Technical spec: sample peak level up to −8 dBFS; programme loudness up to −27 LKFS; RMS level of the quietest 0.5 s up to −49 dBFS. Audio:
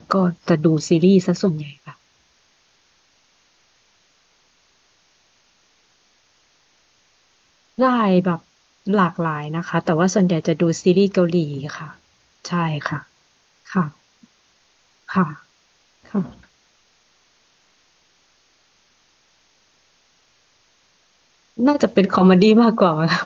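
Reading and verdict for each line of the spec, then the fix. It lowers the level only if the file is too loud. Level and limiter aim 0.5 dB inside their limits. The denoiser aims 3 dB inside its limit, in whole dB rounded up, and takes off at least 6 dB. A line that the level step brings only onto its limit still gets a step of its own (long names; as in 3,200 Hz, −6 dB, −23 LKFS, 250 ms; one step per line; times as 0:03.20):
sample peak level −2.5 dBFS: out of spec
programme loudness −18.5 LKFS: out of spec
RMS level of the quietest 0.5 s −60 dBFS: in spec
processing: level −9 dB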